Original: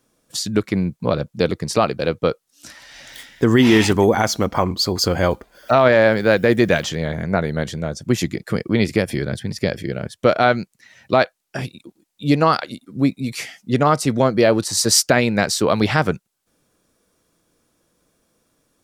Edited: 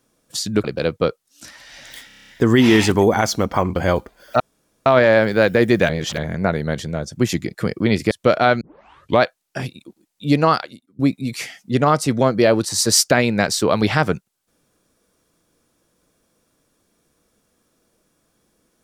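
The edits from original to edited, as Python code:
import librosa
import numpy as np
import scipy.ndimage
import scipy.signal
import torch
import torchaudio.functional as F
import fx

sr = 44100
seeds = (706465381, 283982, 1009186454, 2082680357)

y = fx.edit(x, sr, fx.cut(start_s=0.64, length_s=1.22),
    fx.stutter(start_s=3.29, slice_s=0.03, count=8),
    fx.cut(start_s=4.77, length_s=0.34),
    fx.insert_room_tone(at_s=5.75, length_s=0.46),
    fx.reverse_span(start_s=6.78, length_s=0.29),
    fx.cut(start_s=9.0, length_s=1.1),
    fx.tape_start(start_s=10.6, length_s=0.61),
    fx.fade_out_to(start_s=12.52, length_s=0.46, curve='qua', floor_db=-19.5), tone=tone)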